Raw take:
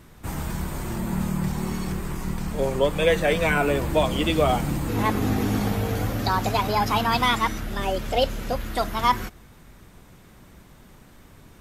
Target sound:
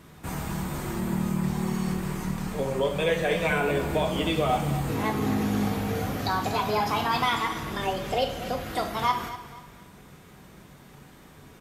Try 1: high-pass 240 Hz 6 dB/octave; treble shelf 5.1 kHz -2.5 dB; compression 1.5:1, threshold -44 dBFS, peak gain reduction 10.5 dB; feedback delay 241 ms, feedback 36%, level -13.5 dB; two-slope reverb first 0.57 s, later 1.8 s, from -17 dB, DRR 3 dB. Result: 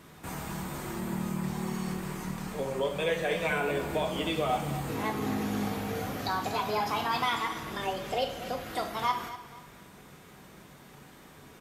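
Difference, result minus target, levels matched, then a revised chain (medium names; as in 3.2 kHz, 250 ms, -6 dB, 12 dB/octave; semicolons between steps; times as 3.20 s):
compression: peak gain reduction +4 dB; 125 Hz band -2.5 dB
high-pass 100 Hz 6 dB/octave; treble shelf 5.1 kHz -2.5 dB; compression 1.5:1, threshold -32.5 dBFS, peak gain reduction 6.5 dB; feedback delay 241 ms, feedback 36%, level -13.5 dB; two-slope reverb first 0.57 s, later 1.8 s, from -17 dB, DRR 3 dB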